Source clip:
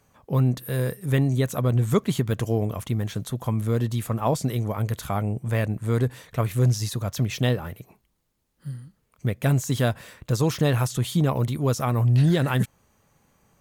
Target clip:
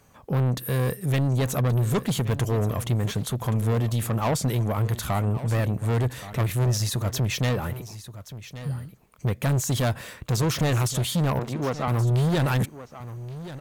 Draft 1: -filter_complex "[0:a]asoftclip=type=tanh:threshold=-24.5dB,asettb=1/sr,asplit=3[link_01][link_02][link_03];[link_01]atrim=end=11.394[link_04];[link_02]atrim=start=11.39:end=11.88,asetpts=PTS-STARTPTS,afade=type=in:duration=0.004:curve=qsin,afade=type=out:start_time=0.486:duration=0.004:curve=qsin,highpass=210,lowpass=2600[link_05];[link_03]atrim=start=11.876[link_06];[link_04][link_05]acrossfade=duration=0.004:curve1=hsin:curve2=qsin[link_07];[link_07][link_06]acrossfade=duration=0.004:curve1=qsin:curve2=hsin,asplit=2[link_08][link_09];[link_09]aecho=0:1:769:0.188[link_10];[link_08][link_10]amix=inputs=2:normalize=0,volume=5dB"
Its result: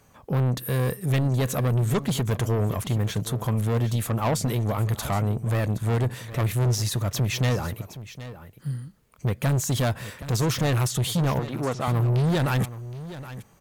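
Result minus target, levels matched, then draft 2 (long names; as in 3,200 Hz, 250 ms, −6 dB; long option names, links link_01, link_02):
echo 357 ms early
-filter_complex "[0:a]asoftclip=type=tanh:threshold=-24.5dB,asettb=1/sr,asplit=3[link_01][link_02][link_03];[link_01]atrim=end=11.394[link_04];[link_02]atrim=start=11.39:end=11.88,asetpts=PTS-STARTPTS,afade=type=in:duration=0.004:curve=qsin,afade=type=out:start_time=0.486:duration=0.004:curve=qsin,highpass=210,lowpass=2600[link_05];[link_03]atrim=start=11.876[link_06];[link_04][link_05]acrossfade=duration=0.004:curve1=hsin:curve2=qsin[link_07];[link_07][link_06]acrossfade=duration=0.004:curve1=qsin:curve2=hsin,asplit=2[link_08][link_09];[link_09]aecho=0:1:1126:0.188[link_10];[link_08][link_10]amix=inputs=2:normalize=0,volume=5dB"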